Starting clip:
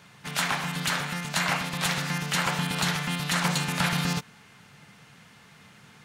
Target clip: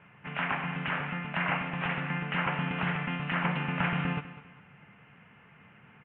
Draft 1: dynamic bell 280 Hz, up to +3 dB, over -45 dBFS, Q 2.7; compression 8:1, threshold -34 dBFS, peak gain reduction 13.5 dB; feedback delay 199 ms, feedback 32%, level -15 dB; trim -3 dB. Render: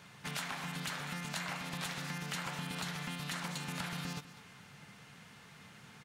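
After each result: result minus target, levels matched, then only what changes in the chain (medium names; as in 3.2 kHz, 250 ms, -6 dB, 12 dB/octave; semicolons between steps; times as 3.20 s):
compression: peak gain reduction +13.5 dB; 4 kHz band +8.0 dB
remove: compression 8:1, threshold -34 dBFS, peak gain reduction 13.5 dB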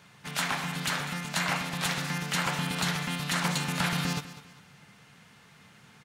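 4 kHz band +8.0 dB
add after dynamic bell: steep low-pass 2.9 kHz 72 dB/octave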